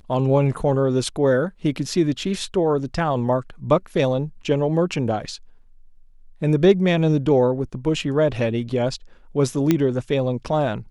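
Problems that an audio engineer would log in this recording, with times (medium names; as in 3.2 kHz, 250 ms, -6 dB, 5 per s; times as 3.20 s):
9.71 s: pop -5 dBFS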